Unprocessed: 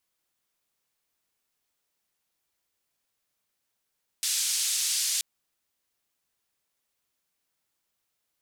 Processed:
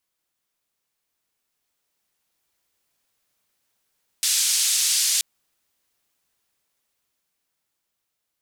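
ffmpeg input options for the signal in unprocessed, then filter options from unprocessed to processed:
-f lavfi -i "anoisesrc=c=white:d=0.98:r=44100:seed=1,highpass=f=4100,lowpass=f=8500,volume=-15.8dB"
-af "dynaudnorm=f=450:g=9:m=6.5dB"

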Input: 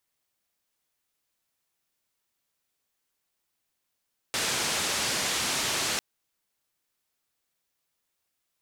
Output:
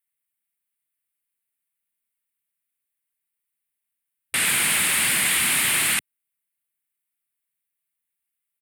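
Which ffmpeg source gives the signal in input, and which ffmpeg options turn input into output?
-f lavfi -i "anoisesrc=c=white:d=1.65:r=44100:seed=1,highpass=f=81,lowpass=f=7200,volume=-19dB"
-filter_complex "[0:a]firequalizer=gain_entry='entry(110,0);entry(160,5);entry(480,-6);entry(2100,10);entry(5900,-10);entry(8800,13)':delay=0.05:min_phase=1,asplit=2[a][b];[b]asoftclip=type=tanh:threshold=-21.5dB,volume=-8dB[c];[a][c]amix=inputs=2:normalize=0,afwtdn=0.02"

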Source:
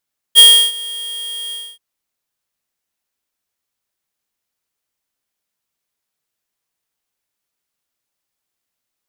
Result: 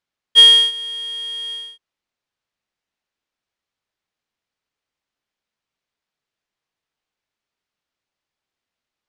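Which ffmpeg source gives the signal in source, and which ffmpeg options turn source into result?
-f lavfi -i "aevalsrc='0.668*(2*lt(mod(3250*t,1),0.5)-1)':d=1.431:s=44100,afade=t=in:d=0.037,afade=t=out:st=0.037:d=0.328:silence=0.075,afade=t=out:st=1.17:d=0.261"
-af "lowpass=4.4k"

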